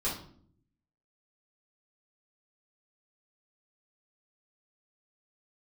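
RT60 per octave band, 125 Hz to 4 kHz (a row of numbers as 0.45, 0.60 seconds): 1.1, 0.95, 0.65, 0.50, 0.40, 0.40 seconds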